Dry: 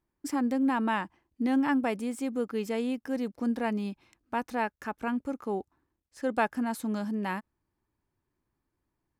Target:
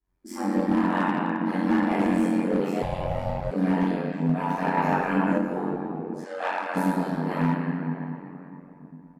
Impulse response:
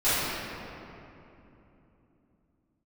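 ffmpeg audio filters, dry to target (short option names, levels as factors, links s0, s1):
-filter_complex "[0:a]aecho=1:1:25|40|63:0.422|0.376|0.126[s0];[1:a]atrim=start_sample=2205,asetrate=40131,aresample=44100[s1];[s0][s1]afir=irnorm=-1:irlink=0,flanger=delay=18:depth=3.8:speed=0.65,aeval=exprs='val(0)*sin(2*PI*45*n/s)':c=same,asoftclip=type=hard:threshold=0.398,asettb=1/sr,asplit=3[s2][s3][s4];[s2]atrim=end=2.824[s5];[s3]atrim=start=2.82:end=3.51,asetpts=PTS-STARTPTS,afade=t=in:d=0.004:c=qsin,afade=t=out:st=0.686:d=0.004:c=qsin,aeval=exprs='val(0)*sin(2*PI*330*n/s)':c=same[s6];[s4]atrim=start=3.506[s7];[s5][s6]acrossfade=d=0.004:c1=hsin:c2=qsin[s8];[s8][s7]acrossfade=d=0.004:c1=qsin:c2=hsin,asettb=1/sr,asplit=3[s9][s10][s11];[s9]atrim=end=4.774[s12];[s10]atrim=start=4.77:end=5.38,asetpts=PTS-STARTPTS,afade=t=in:d=0.004:c=qsin,afade=t=out:st=0.606:d=0.004:c=qsin,acontrast=27[s13];[s11]atrim=start=5.376[s14];[s12][s13]acrossfade=d=0.004:c1=hsin:c2=qsin[s15];[s15][s14]acrossfade=d=0.004:c1=qsin:c2=hsin,asplit=3[s16][s17][s18];[s16]afade=t=out:st=6.24:d=0.02[s19];[s17]highpass=760,lowpass=7800,afade=t=in:st=6.24:d=0.02,afade=t=out:st=6.75:d=0.02[s20];[s18]afade=t=in:st=6.75:d=0.02[s21];[s19][s20][s21]amix=inputs=3:normalize=0,volume=0.398"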